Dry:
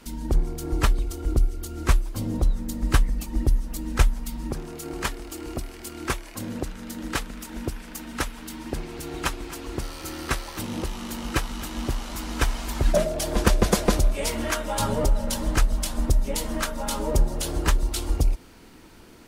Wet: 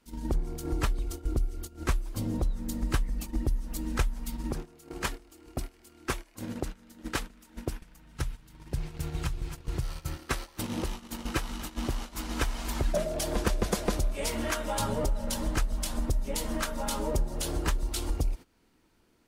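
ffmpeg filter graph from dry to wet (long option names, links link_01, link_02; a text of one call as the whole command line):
ffmpeg -i in.wav -filter_complex "[0:a]asettb=1/sr,asplit=3[link_01][link_02][link_03];[link_01]atrim=end=7.814[link_04];[link_02]atrim=start=7.81:end=10.17,asetpts=PTS-STARTPTS,afade=type=in:duration=0.004:curve=qsin,afade=type=out:start_time=2.356:duration=0.004:curve=qsin,lowshelf=frequency=180:width_type=q:width=3:gain=8.5,acrossover=split=96|380|2900[link_05][link_06][link_07][link_08];[link_05]acompressor=threshold=-26dB:ratio=3[link_09];[link_06]acompressor=threshold=-35dB:ratio=3[link_10];[link_07]acompressor=threshold=-41dB:ratio=3[link_11];[link_08]acompressor=threshold=-42dB:ratio=3[link_12];[link_09][link_10][link_11][link_12]amix=inputs=4:normalize=0[link_13];[link_03]atrim=start=10.166[link_14];[link_04][link_13]acrossfade=duration=0.004:curve1=hsin:curve2=qsin[link_15];[link_15][link_14]acrossfade=duration=0.004:curve1=qsin:curve2=hsin,agate=range=-18dB:threshold=-31dB:ratio=16:detection=peak,acompressor=threshold=-30dB:ratio=2" out.wav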